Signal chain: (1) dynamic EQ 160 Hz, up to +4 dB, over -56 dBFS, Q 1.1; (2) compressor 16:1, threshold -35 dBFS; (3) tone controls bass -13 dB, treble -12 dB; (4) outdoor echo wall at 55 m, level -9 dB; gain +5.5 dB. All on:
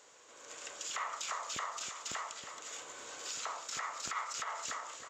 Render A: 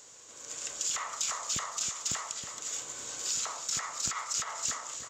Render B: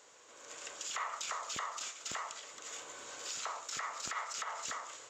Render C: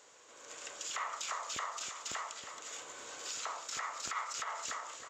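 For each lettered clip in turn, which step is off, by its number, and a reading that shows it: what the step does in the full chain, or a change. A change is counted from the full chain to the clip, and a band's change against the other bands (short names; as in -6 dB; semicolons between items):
3, 125 Hz band +8.0 dB; 4, echo-to-direct -10.0 dB to none; 1, 125 Hz band -2.5 dB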